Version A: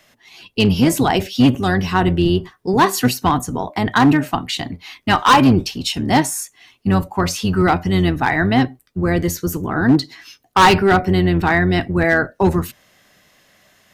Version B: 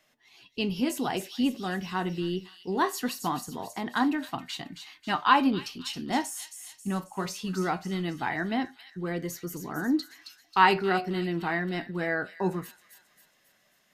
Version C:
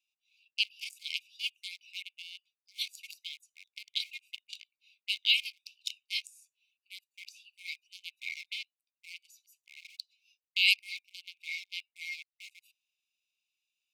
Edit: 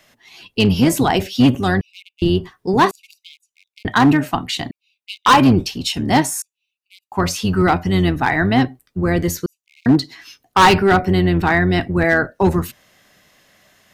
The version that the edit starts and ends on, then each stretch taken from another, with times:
A
0:01.81–0:02.22: punch in from C
0:02.91–0:03.85: punch in from C
0:04.71–0:05.26: punch in from C
0:06.42–0:07.12: punch in from C
0:09.46–0:09.86: punch in from C
not used: B

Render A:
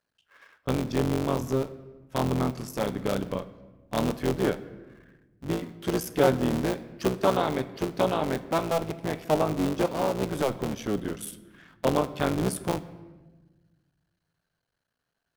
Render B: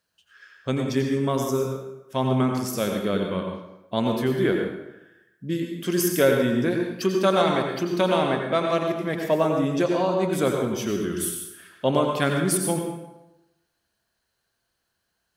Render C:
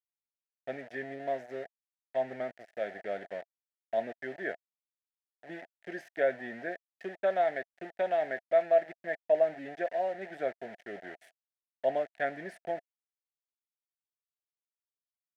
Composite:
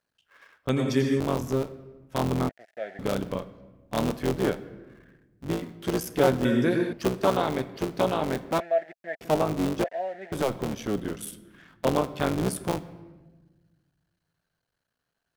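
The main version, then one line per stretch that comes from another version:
A
0:00.69–0:01.20: punch in from B
0:02.49–0:02.99: punch in from C
0:06.45–0:06.93: punch in from B
0:08.60–0:09.21: punch in from C
0:09.84–0:10.32: punch in from C

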